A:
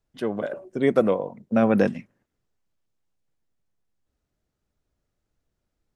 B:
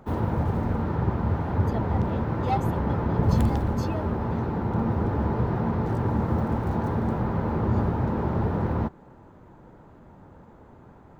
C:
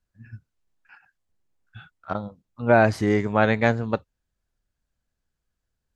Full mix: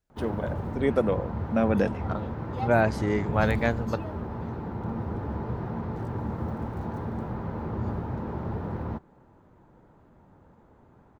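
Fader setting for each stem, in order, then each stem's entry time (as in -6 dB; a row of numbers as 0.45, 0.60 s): -4.5, -7.0, -5.5 dB; 0.00, 0.10, 0.00 s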